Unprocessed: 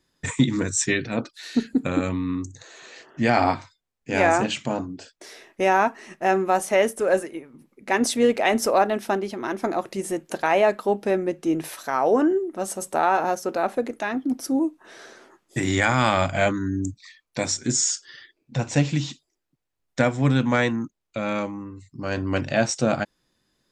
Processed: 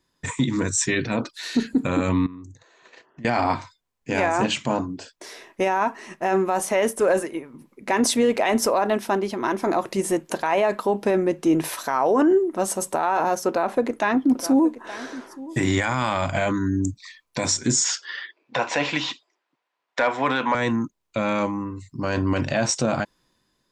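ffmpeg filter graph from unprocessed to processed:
ffmpeg -i in.wav -filter_complex "[0:a]asettb=1/sr,asplit=3[link_01][link_02][link_03];[link_01]atrim=end=2.264[link_04];[link_02]atrim=start=2.26:end=3.25,asetpts=PTS-STARTPTS,afade=type=in:duration=0.004:curve=qsin,afade=type=out:start_time=0.986:duration=0.004:curve=qsin,agate=range=-14dB:threshold=-44dB:ratio=16:release=100:detection=peak,lowpass=frequency=2700:poles=1,acompressor=threshold=-43dB:ratio=6:attack=3.2:release=140:knee=1:detection=peak[link_05];[link_03]atrim=start=3.246[link_06];[link_04][link_05]acrossfade=duration=0.004:curve1=hsin:curve2=qsin[link_07];[link_07][link_06]acrossfade=duration=0.004:curve1=qsin:curve2=hsin,asettb=1/sr,asplit=3[link_08][link_09][link_10];[link_08]atrim=end=13.484[link_11];[link_09]atrim=start=13.48:end=15.79,asetpts=PTS-STARTPTS,afade=type=in:duration=0.004:curve=qsin,afade=type=out:start_time=2.306:duration=0.004:curve=qsin,highshelf=frequency=5100:gain=-5,aecho=1:1:871:0.119,atrim=end_sample=101871[link_12];[link_10]atrim=start=15.786[link_13];[link_11][link_12]acrossfade=duration=0.004:curve1=hsin:curve2=qsin[link_14];[link_14][link_13]acrossfade=duration=0.004:curve1=qsin:curve2=hsin,asettb=1/sr,asplit=3[link_15][link_16][link_17];[link_15]atrim=end=17.844[link_18];[link_16]atrim=start=17.84:end=20.55,asetpts=PTS-STARTPTS,afade=type=in:duration=0.004:curve=qsin,afade=type=out:start_time=2.706:duration=0.004:curve=qsin,highpass=620,lowpass=3100,aeval=exprs='0.422*sin(PI/2*1.58*val(0)/0.422)':channel_layout=same[link_19];[link_17]atrim=start=20.546[link_20];[link_18][link_19]acrossfade=duration=0.004:curve1=hsin:curve2=qsin[link_21];[link_21][link_20]acrossfade=duration=0.004:curve1=qsin:curve2=hsin,equalizer=frequency=1000:width=7.7:gain=8,dynaudnorm=framelen=270:gausssize=5:maxgain=11.5dB,alimiter=limit=-10dB:level=0:latency=1:release=32,volume=-1.5dB" out.wav

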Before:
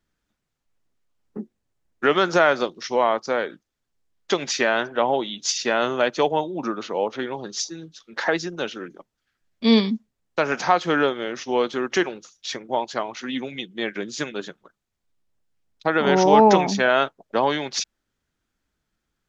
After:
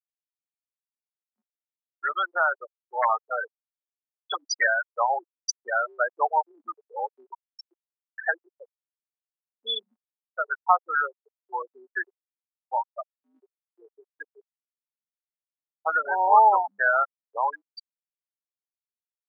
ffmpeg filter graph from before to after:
ffmpeg -i in.wav -filter_complex "[0:a]asettb=1/sr,asplit=3[link_01][link_02][link_03];[link_01]atrim=end=2.974[link_04];[link_02]atrim=start=2.97:end=4.67,asetpts=PTS-STARTPTS,afade=type=in:duration=0.004:curve=qsin,afade=type=out:start_time=1.696:duration=0.004:curve=qsin,aecho=1:1:6.5:0.87,atrim=end_sample=74970,aeval=exprs='(mod(2.24*val(0)+1,2)-1)/2.24':channel_layout=same[link_05];[link_03]atrim=start=4.666[link_06];[link_04][link_05]acrossfade=duration=0.004:curve1=hsin:curve2=qsin[link_07];[link_07][link_06]acrossfade=duration=0.004:curve1=qsin:curve2=hsin,asettb=1/sr,asplit=3[link_08][link_09][link_10];[link_08]atrim=end=8.284[link_11];[link_09]atrim=start=8.28:end=11.62,asetpts=PTS-STARTPTS,afade=type=in:duration=0.004:curve=qsin,afade=type=out:start_time=3.336:duration=0.004:curve=qsin,highpass=170,lowshelf=frequency=310:gain=-5,aecho=1:1:105|210|315|420:0.0794|0.0413|0.0215|0.0112,atrim=end_sample=147294[link_12];[link_10]atrim=start=11.616[link_13];[link_11][link_12]acrossfade=duration=0.004:curve1=hsin:curve2=qsin[link_14];[link_14][link_13]acrossfade=duration=0.004:curve1=qsin:curve2=hsin,afftfilt=real='re*gte(hypot(re,im),0.316)':imag='im*gte(hypot(re,im),0.316)':win_size=1024:overlap=0.75,highpass=frequency=820:width=0.5412,highpass=frequency=820:width=1.3066,dynaudnorm=framelen=910:gausssize=7:maxgain=11.5dB,volume=-4dB" out.wav

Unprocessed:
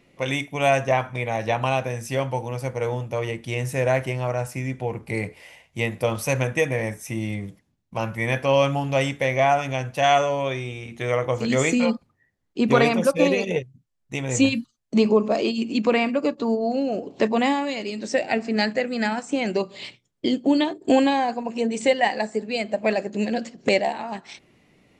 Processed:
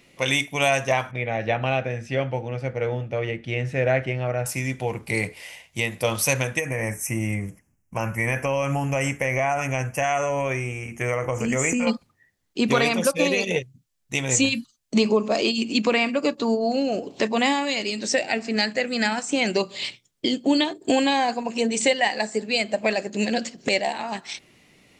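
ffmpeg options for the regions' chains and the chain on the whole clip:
ffmpeg -i in.wav -filter_complex "[0:a]asettb=1/sr,asplit=3[link_01][link_02][link_03];[link_01]atrim=end=1.114[link_04];[link_02]atrim=start=1.11:end=4.46,asetpts=PTS-STARTPTS,afade=type=in:duration=0.004:curve=qsin,afade=type=out:start_time=3.346:duration=0.004:curve=qsin,lowpass=2100,equalizer=frequency=1000:width=3.8:gain=-13[link_05];[link_03]atrim=start=4.456[link_06];[link_04][link_05]acrossfade=duration=0.004:curve1=hsin:curve2=qsin[link_07];[link_07][link_06]acrossfade=duration=0.004:curve1=qsin:curve2=hsin,asettb=1/sr,asplit=3[link_08][link_09][link_10];[link_08]atrim=end=6.594[link_11];[link_09]atrim=start=6.59:end=11.87,asetpts=PTS-STARTPTS,afade=type=in:duration=0.004:curve=qsin,afade=type=out:start_time=5.276:duration=0.004:curve=qsin,acompressor=threshold=-21dB:ratio=5:attack=3.2:release=140:knee=1:detection=peak,asuperstop=centerf=3900:order=4:qfactor=1.2,lowshelf=frequency=82:gain=8.5[link_12];[link_10]atrim=start=11.866[link_13];[link_11][link_12]acrossfade=duration=0.004:curve1=hsin:curve2=qsin[link_14];[link_14][link_13]acrossfade=duration=0.004:curve1=qsin:curve2=hsin,highshelf=frequency=2000:gain=10.5,alimiter=limit=-9dB:level=0:latency=1:release=376" out.wav

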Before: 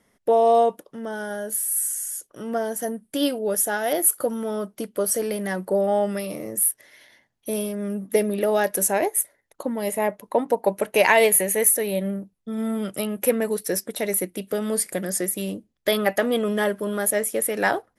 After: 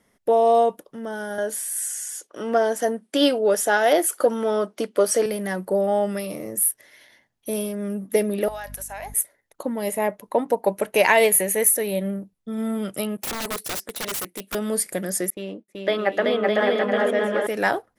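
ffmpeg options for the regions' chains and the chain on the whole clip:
ffmpeg -i in.wav -filter_complex "[0:a]asettb=1/sr,asplit=3[link_01][link_02][link_03];[link_01]atrim=end=1.384[link_04];[link_02]atrim=start=1.38:end=5.26,asetpts=PTS-STARTPTS,afade=type=in:duration=0.004:curve=qsin,afade=type=out:start_time=3.876:duration=0.004:curve=qsin,acontrast=76,highpass=300,lowpass=6400[link_05];[link_03]atrim=start=5.256[link_06];[link_04][link_05]acrossfade=duration=0.004:curve1=hsin:curve2=qsin[link_07];[link_07][link_06]acrossfade=duration=0.004:curve1=qsin:curve2=hsin,asettb=1/sr,asplit=3[link_08][link_09][link_10];[link_08]atrim=end=8.484[link_11];[link_09]atrim=start=8.48:end=9.14,asetpts=PTS-STARTPTS,afade=type=in:duration=0.004:curve=qsin,afade=type=out:start_time=0.656:duration=0.004:curve=qsin,highpass=frequency=710:width=0.5412,highpass=frequency=710:width=1.3066,aeval=exprs='val(0)+0.0141*(sin(2*PI*50*n/s)+sin(2*PI*2*50*n/s)/2+sin(2*PI*3*50*n/s)/3+sin(2*PI*4*50*n/s)/4+sin(2*PI*5*50*n/s)/5)':channel_layout=same,acompressor=threshold=-29dB:ratio=16:attack=3.2:release=140:knee=1:detection=peak[link_12];[link_10]atrim=start=9.136[link_13];[link_11][link_12]acrossfade=duration=0.004:curve1=hsin:curve2=qsin[link_14];[link_14][link_13]acrossfade=duration=0.004:curve1=qsin:curve2=hsin,asettb=1/sr,asplit=3[link_15][link_16][link_17];[link_15]atrim=end=13.174[link_18];[link_16]atrim=start=13.17:end=14.55,asetpts=PTS-STARTPTS,afade=type=in:duration=0.004:curve=qsin,afade=type=out:start_time=1.376:duration=0.004:curve=qsin,highpass=frequency=380:poles=1,aeval=exprs='(mod(14.1*val(0)+1,2)-1)/14.1':channel_layout=same,agate=range=-33dB:threshold=-53dB:ratio=3:release=100:detection=peak[link_19];[link_17]atrim=start=14.546[link_20];[link_18][link_19]acrossfade=duration=0.004:curve1=hsin:curve2=qsin[link_21];[link_21][link_20]acrossfade=duration=0.004:curve1=qsin:curve2=hsin,asettb=1/sr,asplit=3[link_22][link_23][link_24];[link_22]atrim=end=15.304[link_25];[link_23]atrim=start=15.3:end=17.47,asetpts=PTS-STARTPTS,afade=type=in:duration=0.004:curve=qsin,afade=type=out:start_time=2.166:duration=0.004:curve=qsin,highpass=270,lowpass=2900,agate=range=-33dB:threshold=-45dB:ratio=3:release=100:detection=peak,aecho=1:1:380|608|744.8|826.9|876.1:0.794|0.631|0.501|0.398|0.316,atrim=end_sample=95697[link_26];[link_24]atrim=start=17.466[link_27];[link_25][link_26]acrossfade=duration=0.004:curve1=hsin:curve2=qsin[link_28];[link_28][link_27]acrossfade=duration=0.004:curve1=qsin:curve2=hsin" out.wav

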